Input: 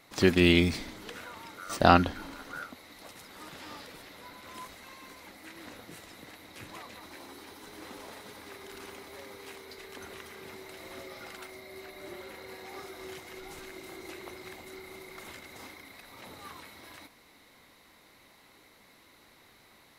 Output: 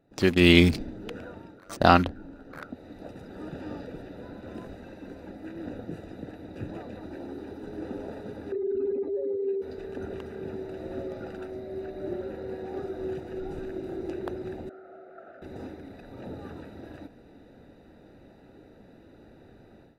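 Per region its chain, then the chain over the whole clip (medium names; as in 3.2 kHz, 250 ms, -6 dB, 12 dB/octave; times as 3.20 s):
8.52–9.62 s: spectral contrast enhancement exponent 2.6 + small resonant body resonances 410/2600/3900 Hz, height 7 dB, ringing for 20 ms
14.69–15.42 s: companding laws mixed up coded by mu + two resonant band-passes 960 Hz, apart 0.95 oct
whole clip: local Wiener filter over 41 samples; level rider gain up to 15 dB; trim -1 dB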